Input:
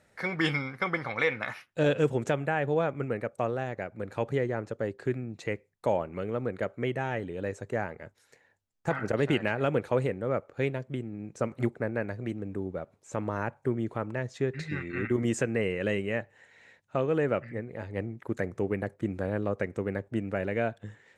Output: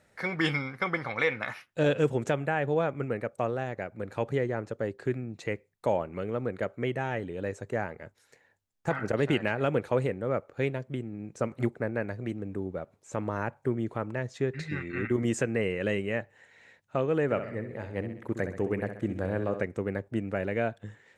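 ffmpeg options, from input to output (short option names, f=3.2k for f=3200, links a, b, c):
-filter_complex "[0:a]asettb=1/sr,asplit=3[a][b][c];[a]atrim=end=17.244[d];[b]atrim=start=17.24:end=19.63,asetpts=PTS-STARTPTS,afade=t=in:d=0.004:c=qsin,afade=t=out:st=2.386:d=0.004:c=qsin,aecho=1:1:65|130|195|260|325|390:0.335|0.174|0.0906|0.0471|0.0245|0.0127,atrim=end_sample=105399[e];[c]atrim=start=19.626[f];[d][e]acrossfade=d=0.004:c1=hsin:c2=qsin[g];[g][f]acrossfade=d=0.004:c1=qsin:c2=hsin"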